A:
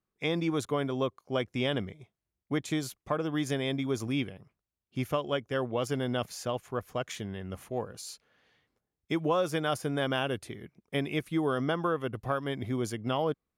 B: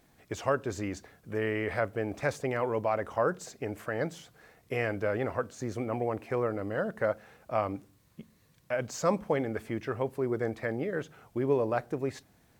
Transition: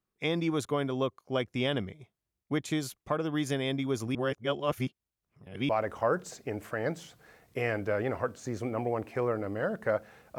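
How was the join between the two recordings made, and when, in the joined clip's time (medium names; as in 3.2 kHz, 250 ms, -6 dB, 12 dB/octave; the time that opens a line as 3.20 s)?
A
4.15–5.69 s: reverse
5.69 s: go over to B from 2.84 s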